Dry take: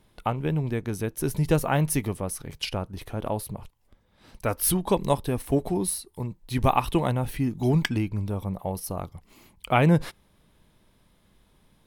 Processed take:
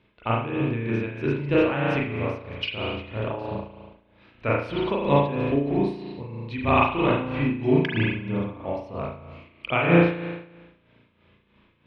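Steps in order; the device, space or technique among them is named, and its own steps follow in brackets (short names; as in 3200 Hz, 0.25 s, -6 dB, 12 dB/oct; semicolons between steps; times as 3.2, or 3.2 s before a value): combo amplifier with spring reverb and tremolo (spring tank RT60 1.1 s, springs 35 ms, chirp 55 ms, DRR -6 dB; tremolo 3.1 Hz, depth 65%; speaker cabinet 77–3700 Hz, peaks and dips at 170 Hz -8 dB, 780 Hz -7 dB, 2500 Hz +8 dB)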